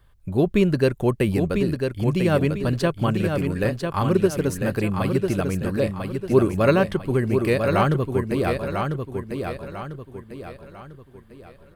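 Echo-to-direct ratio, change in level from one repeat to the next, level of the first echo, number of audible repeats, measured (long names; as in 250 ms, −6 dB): −5.0 dB, −8.0 dB, −5.5 dB, 4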